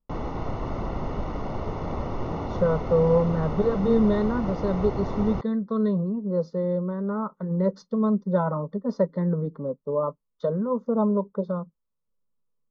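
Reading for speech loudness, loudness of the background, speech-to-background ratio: −25.5 LKFS, −32.0 LKFS, 6.5 dB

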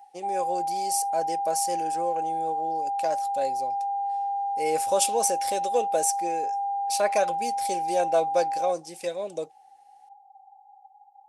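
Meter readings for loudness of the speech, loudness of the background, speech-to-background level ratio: −29.0 LKFS, −28.5 LKFS, −0.5 dB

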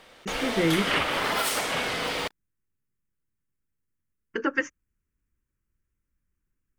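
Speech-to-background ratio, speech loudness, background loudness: −2.0 dB, −29.0 LKFS, −27.0 LKFS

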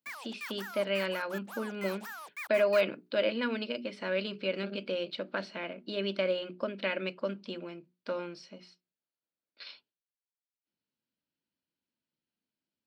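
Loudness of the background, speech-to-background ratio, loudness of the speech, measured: −43.0 LKFS, 9.5 dB, −33.5 LKFS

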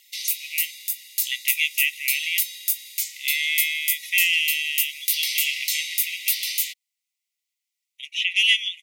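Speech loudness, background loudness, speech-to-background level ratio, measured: −23.5 LKFS, −24.5 LKFS, 1.0 dB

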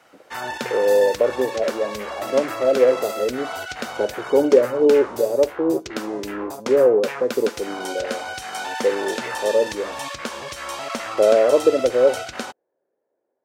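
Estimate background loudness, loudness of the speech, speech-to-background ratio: −30.0 LKFS, −20.0 LKFS, 10.0 dB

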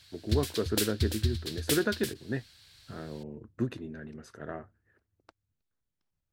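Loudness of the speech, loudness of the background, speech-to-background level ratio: −35.0 LKFS, −33.0 LKFS, −2.0 dB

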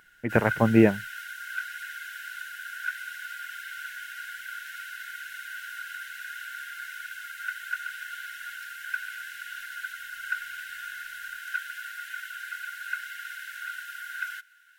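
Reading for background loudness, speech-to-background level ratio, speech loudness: −36.5 LKFS, 14.0 dB, −22.5 LKFS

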